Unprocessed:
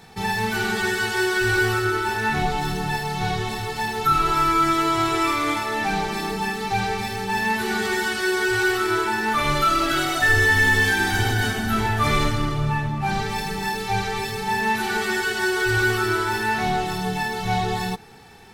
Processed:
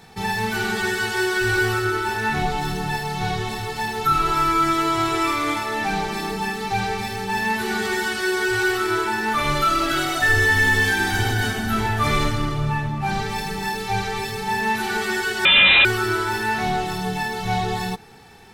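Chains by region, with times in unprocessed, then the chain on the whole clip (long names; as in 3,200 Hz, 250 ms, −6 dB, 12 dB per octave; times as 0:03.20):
0:15.45–0:15.85: sign of each sample alone + parametric band 970 Hz +12 dB 2.8 octaves + voice inversion scrambler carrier 3,900 Hz
whole clip: no processing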